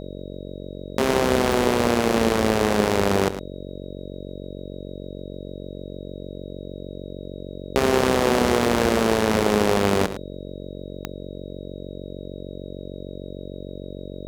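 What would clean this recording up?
click removal
hum removal 46.6 Hz, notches 13
notch filter 3,800 Hz, Q 30
echo removal 109 ms −12 dB

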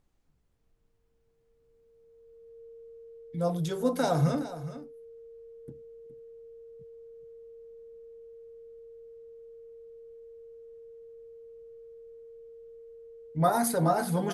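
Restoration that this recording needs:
notch filter 460 Hz, Q 30
downward expander −59 dBFS, range −21 dB
echo removal 417 ms −13.5 dB

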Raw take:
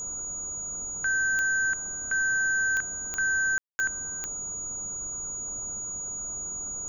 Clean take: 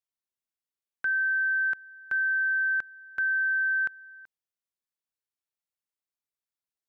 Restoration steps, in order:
click removal
notch filter 6,800 Hz, Q 30
ambience match 0:03.58–0:03.79
noise reduction from a noise print 30 dB

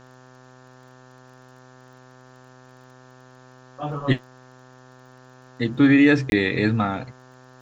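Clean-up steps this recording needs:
click removal
hum removal 127.8 Hz, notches 14
repair the gap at 0:06.30, 21 ms
downward expander −42 dBFS, range −21 dB

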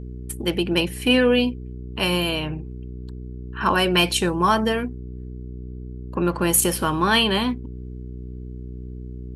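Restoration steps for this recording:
clipped peaks rebuilt −8 dBFS
hum removal 61.9 Hz, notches 7

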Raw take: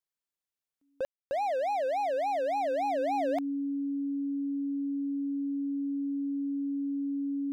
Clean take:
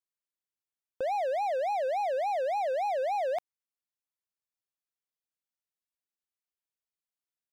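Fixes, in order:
notch filter 280 Hz, Q 30
ambience match 0:01.05–0:01.31

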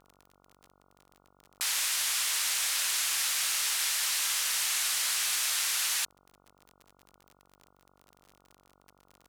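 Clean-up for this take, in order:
clipped peaks rebuilt −19.5 dBFS
click removal
hum removal 47.5 Hz, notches 30

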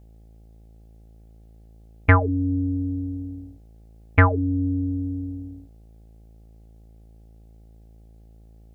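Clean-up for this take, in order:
hum removal 55 Hz, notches 15

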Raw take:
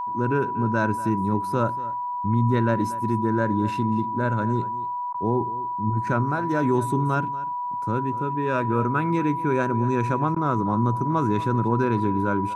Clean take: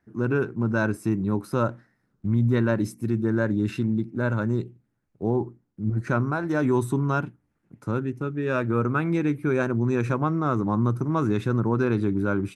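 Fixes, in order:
notch filter 980 Hz, Q 30
repair the gap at 0:05.13/0:10.35, 11 ms
echo removal 237 ms −17 dB

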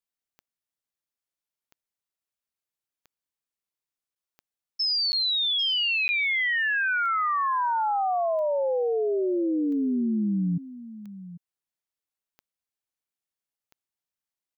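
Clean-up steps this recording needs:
click removal
repair the gap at 0:04.15/0:05.12/0:06.08, 10 ms
echo removal 794 ms −15.5 dB

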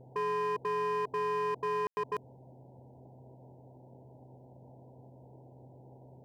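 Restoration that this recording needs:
clipped peaks rebuilt −28.5 dBFS
hum removal 128.6 Hz, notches 5
ambience match 0:01.87–0:01.97
noise reduction from a noise print 26 dB

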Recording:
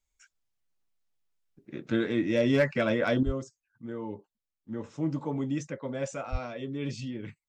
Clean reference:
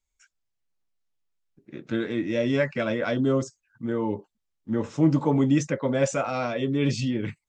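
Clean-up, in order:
clipped peaks rebuilt −15 dBFS
0:03.23: level correction +10 dB
0:03.25–0:03.37: high-pass filter 140 Hz 24 dB per octave
0:06.31–0:06.43: high-pass filter 140 Hz 24 dB per octave

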